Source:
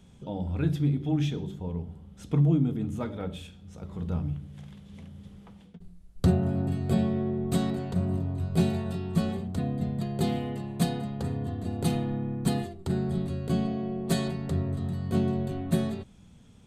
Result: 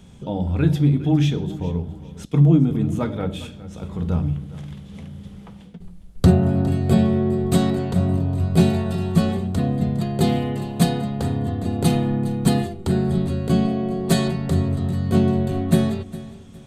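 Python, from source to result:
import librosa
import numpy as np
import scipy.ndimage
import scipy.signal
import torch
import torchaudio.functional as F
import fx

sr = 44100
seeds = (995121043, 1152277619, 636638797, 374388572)

y = fx.echo_feedback(x, sr, ms=409, feedback_pct=31, wet_db=-17)
y = fx.band_widen(y, sr, depth_pct=100, at=(2.25, 2.71))
y = y * 10.0 ** (8.5 / 20.0)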